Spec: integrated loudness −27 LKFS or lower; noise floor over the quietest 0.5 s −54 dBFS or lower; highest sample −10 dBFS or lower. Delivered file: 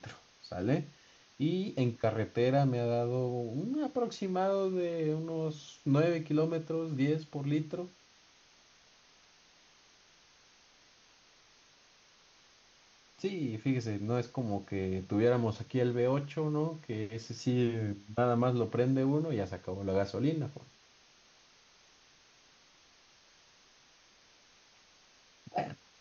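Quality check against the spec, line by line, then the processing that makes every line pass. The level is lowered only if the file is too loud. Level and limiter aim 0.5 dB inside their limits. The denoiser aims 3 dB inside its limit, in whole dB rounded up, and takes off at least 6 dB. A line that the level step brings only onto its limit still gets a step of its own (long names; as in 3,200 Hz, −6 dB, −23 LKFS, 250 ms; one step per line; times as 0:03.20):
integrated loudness −33.0 LKFS: in spec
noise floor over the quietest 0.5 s −63 dBFS: in spec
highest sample −16.0 dBFS: in spec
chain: no processing needed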